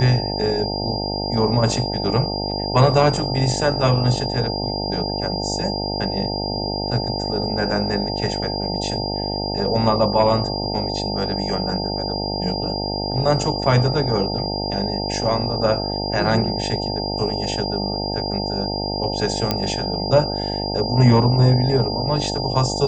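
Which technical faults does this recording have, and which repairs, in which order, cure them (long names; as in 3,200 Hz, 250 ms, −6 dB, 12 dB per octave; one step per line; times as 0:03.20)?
mains buzz 50 Hz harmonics 18 −26 dBFS
whistle 4,800 Hz −27 dBFS
0:19.51: click −5 dBFS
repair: click removal
notch filter 4,800 Hz, Q 30
hum removal 50 Hz, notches 18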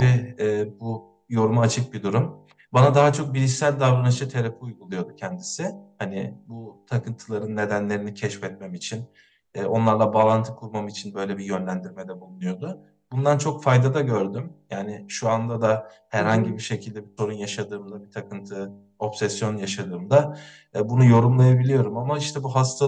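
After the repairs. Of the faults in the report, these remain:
none of them is left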